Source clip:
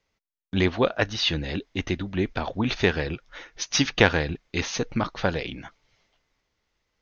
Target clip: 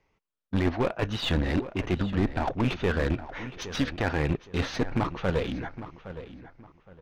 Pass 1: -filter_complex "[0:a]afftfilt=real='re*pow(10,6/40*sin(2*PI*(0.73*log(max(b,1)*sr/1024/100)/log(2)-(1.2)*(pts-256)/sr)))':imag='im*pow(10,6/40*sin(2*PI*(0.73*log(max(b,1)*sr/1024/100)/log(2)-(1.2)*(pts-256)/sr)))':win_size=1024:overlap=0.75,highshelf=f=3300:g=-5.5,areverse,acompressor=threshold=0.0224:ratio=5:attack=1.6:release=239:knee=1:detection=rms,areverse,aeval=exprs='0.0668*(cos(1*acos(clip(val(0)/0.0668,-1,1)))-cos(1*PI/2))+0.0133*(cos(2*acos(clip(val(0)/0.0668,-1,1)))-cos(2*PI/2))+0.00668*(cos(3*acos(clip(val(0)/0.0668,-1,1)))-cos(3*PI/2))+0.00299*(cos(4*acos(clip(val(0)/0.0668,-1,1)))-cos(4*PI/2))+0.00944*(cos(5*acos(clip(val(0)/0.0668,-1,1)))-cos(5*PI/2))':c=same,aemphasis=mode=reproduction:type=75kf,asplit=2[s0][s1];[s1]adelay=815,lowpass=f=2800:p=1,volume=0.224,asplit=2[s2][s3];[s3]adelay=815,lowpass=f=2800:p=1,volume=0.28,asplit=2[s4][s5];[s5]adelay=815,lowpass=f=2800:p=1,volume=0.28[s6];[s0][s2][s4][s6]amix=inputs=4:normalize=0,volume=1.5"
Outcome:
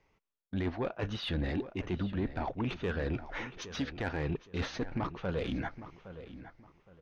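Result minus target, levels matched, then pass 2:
compression: peak gain reduction +9 dB
-filter_complex "[0:a]afftfilt=real='re*pow(10,6/40*sin(2*PI*(0.73*log(max(b,1)*sr/1024/100)/log(2)-(1.2)*(pts-256)/sr)))':imag='im*pow(10,6/40*sin(2*PI*(0.73*log(max(b,1)*sr/1024/100)/log(2)-(1.2)*(pts-256)/sr)))':win_size=1024:overlap=0.75,highshelf=f=3300:g=-5.5,areverse,acompressor=threshold=0.0841:ratio=5:attack=1.6:release=239:knee=1:detection=rms,areverse,aeval=exprs='0.0668*(cos(1*acos(clip(val(0)/0.0668,-1,1)))-cos(1*PI/2))+0.0133*(cos(2*acos(clip(val(0)/0.0668,-1,1)))-cos(2*PI/2))+0.00668*(cos(3*acos(clip(val(0)/0.0668,-1,1)))-cos(3*PI/2))+0.00299*(cos(4*acos(clip(val(0)/0.0668,-1,1)))-cos(4*PI/2))+0.00944*(cos(5*acos(clip(val(0)/0.0668,-1,1)))-cos(5*PI/2))':c=same,aemphasis=mode=reproduction:type=75kf,asplit=2[s0][s1];[s1]adelay=815,lowpass=f=2800:p=1,volume=0.224,asplit=2[s2][s3];[s3]adelay=815,lowpass=f=2800:p=1,volume=0.28,asplit=2[s4][s5];[s5]adelay=815,lowpass=f=2800:p=1,volume=0.28[s6];[s0][s2][s4][s6]amix=inputs=4:normalize=0,volume=1.5"

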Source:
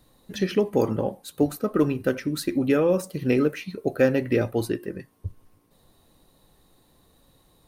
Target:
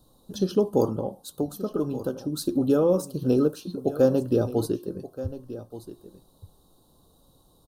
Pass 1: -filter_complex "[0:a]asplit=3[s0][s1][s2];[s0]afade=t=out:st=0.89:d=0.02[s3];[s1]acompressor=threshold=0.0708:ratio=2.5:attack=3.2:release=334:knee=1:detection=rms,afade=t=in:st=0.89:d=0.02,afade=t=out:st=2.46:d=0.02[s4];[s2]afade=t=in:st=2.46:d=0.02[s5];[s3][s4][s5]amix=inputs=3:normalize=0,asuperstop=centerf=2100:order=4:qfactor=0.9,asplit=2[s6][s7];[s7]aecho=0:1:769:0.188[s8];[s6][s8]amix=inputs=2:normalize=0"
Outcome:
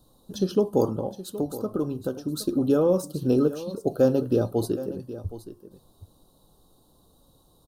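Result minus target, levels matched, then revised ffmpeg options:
echo 409 ms early
-filter_complex "[0:a]asplit=3[s0][s1][s2];[s0]afade=t=out:st=0.89:d=0.02[s3];[s1]acompressor=threshold=0.0708:ratio=2.5:attack=3.2:release=334:knee=1:detection=rms,afade=t=in:st=0.89:d=0.02,afade=t=out:st=2.46:d=0.02[s4];[s2]afade=t=in:st=2.46:d=0.02[s5];[s3][s4][s5]amix=inputs=3:normalize=0,asuperstop=centerf=2100:order=4:qfactor=0.9,asplit=2[s6][s7];[s7]aecho=0:1:1178:0.188[s8];[s6][s8]amix=inputs=2:normalize=0"

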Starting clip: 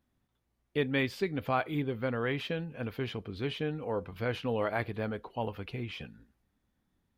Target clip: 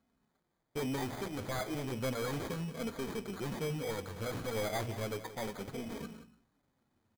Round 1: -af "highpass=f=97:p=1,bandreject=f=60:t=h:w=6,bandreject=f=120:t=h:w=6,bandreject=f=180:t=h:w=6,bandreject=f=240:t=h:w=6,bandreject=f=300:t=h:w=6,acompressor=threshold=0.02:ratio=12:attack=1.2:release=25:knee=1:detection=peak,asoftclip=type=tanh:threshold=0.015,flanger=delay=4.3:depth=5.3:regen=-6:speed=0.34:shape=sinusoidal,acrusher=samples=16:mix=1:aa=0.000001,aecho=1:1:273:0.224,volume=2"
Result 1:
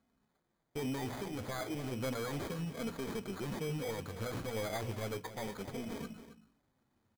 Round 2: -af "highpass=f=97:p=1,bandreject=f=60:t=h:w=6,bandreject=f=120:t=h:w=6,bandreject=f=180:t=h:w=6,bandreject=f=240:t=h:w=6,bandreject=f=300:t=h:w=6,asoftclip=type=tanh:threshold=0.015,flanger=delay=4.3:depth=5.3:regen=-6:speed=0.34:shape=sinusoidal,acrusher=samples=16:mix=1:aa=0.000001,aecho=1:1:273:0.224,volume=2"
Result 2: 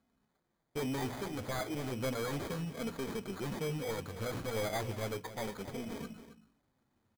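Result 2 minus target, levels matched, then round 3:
echo 97 ms late
-af "highpass=f=97:p=1,bandreject=f=60:t=h:w=6,bandreject=f=120:t=h:w=6,bandreject=f=180:t=h:w=6,bandreject=f=240:t=h:w=6,bandreject=f=300:t=h:w=6,asoftclip=type=tanh:threshold=0.015,flanger=delay=4.3:depth=5.3:regen=-6:speed=0.34:shape=sinusoidal,acrusher=samples=16:mix=1:aa=0.000001,aecho=1:1:176:0.224,volume=2"

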